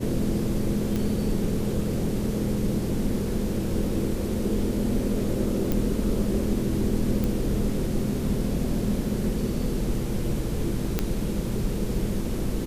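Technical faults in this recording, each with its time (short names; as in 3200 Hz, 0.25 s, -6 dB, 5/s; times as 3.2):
0.96 pop
5.72 pop
7.24 pop
10.99 pop -9 dBFS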